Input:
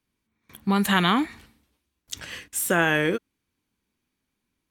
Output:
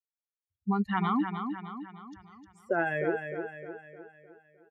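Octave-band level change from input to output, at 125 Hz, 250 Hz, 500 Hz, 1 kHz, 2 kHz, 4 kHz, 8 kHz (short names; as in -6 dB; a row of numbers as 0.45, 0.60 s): -7.0 dB, -5.5 dB, -4.5 dB, -5.5 dB, -9.5 dB, -20.5 dB, under -35 dB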